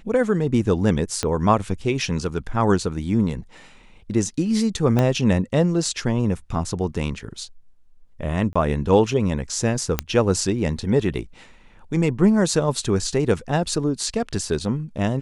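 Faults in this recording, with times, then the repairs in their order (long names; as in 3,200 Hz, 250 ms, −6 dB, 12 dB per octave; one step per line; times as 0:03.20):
0:01.23: click −9 dBFS
0:04.99: click −8 dBFS
0:08.53–0:08.55: drop-out 25 ms
0:09.99: click −4 dBFS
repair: click removal
repair the gap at 0:08.53, 25 ms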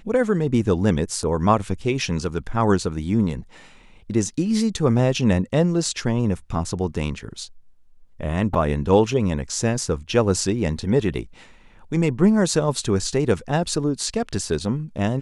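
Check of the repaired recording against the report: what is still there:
0:01.23: click
0:04.99: click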